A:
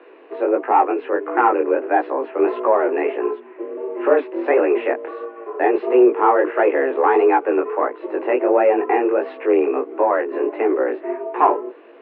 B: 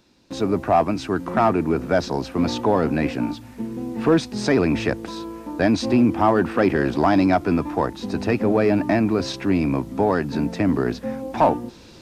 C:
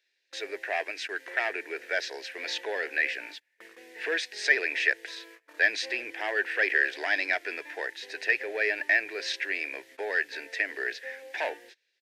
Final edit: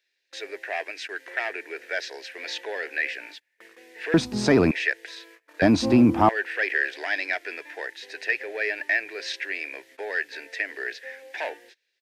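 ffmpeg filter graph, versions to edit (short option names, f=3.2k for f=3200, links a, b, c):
-filter_complex "[1:a]asplit=2[a][b];[2:a]asplit=3[c][d][e];[c]atrim=end=4.142[f];[a]atrim=start=4.138:end=4.712[g];[d]atrim=start=4.708:end=5.622[h];[b]atrim=start=5.618:end=6.292[i];[e]atrim=start=6.288[j];[f][g]acrossfade=d=0.004:c1=hsin:c2=hsin[k];[k][h]acrossfade=d=0.004:c1=hsin:c2=hsin[l];[l][i]acrossfade=d=0.004:c1=hsin:c2=hsin[m];[m][j]acrossfade=d=0.004:c1=hsin:c2=hsin"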